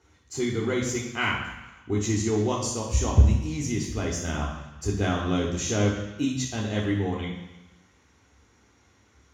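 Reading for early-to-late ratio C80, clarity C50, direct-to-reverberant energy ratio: 6.5 dB, 4.0 dB, -4.0 dB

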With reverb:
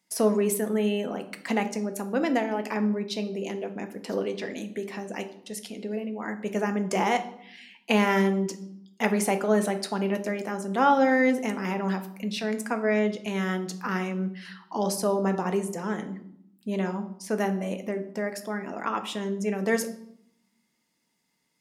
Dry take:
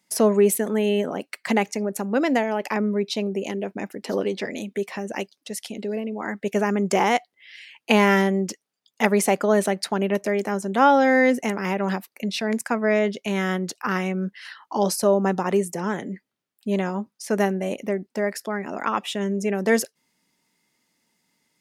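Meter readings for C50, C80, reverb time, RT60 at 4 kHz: 12.5 dB, 16.0 dB, 0.70 s, 0.55 s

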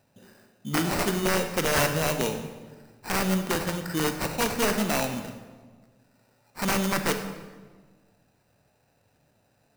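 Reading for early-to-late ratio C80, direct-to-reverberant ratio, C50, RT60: 9.5 dB, 6.0 dB, 8.0 dB, 1.4 s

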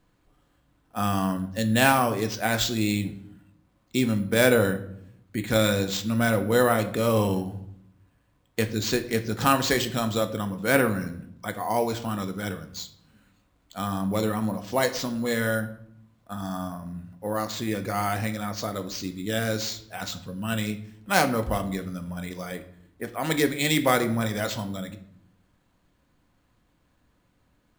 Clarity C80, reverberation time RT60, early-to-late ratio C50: 16.5 dB, 0.70 s, 13.5 dB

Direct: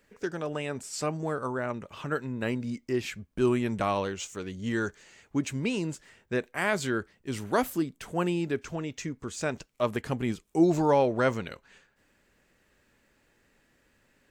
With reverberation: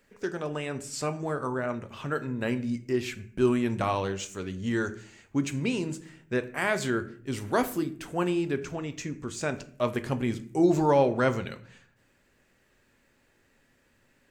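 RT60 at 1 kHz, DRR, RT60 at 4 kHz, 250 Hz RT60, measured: 0.45 s, 9.5 dB, 0.35 s, 0.75 s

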